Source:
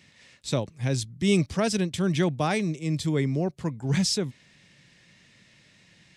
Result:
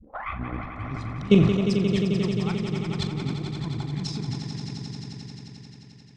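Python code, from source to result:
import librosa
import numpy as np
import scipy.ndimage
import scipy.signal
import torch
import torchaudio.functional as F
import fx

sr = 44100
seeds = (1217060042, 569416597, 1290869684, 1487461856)

y = fx.tape_start_head(x, sr, length_s=0.93)
y = scipy.signal.sosfilt(scipy.signal.butter(2, 3300.0, 'lowpass', fs=sr, output='sos'), y)
y = fx.low_shelf(y, sr, hz=380.0, db=4.5)
y = fx.transient(y, sr, attack_db=-6, sustain_db=10)
y = fx.level_steps(y, sr, step_db=18)
y = fx.env_flanger(y, sr, rest_ms=4.6, full_db=-28.0)
y = fx.chopper(y, sr, hz=7.7, depth_pct=65, duty_pct=35)
y = fx.doubler(y, sr, ms=41.0, db=-11.0)
y = fx.echo_swell(y, sr, ms=88, loudest=5, wet_db=-9.5)
y = fx.sustainer(y, sr, db_per_s=49.0)
y = y * 10.0 ** (6.5 / 20.0)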